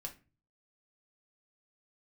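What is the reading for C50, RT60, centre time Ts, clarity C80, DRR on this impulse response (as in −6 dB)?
14.0 dB, 0.30 s, 10 ms, 21.0 dB, 1.5 dB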